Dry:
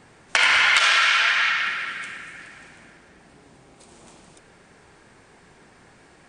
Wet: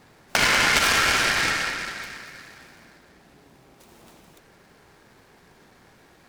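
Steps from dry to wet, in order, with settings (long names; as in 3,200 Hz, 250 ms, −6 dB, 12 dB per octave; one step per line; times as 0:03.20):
short delay modulated by noise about 2,400 Hz, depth 0.047 ms
level −2 dB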